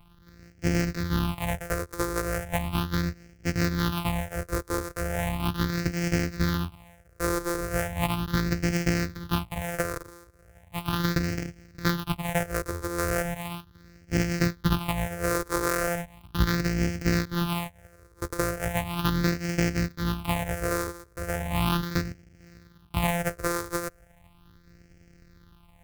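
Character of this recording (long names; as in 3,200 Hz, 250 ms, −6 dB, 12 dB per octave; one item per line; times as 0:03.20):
a buzz of ramps at a fixed pitch in blocks of 256 samples
phaser sweep stages 6, 0.37 Hz, lowest notch 200–1,000 Hz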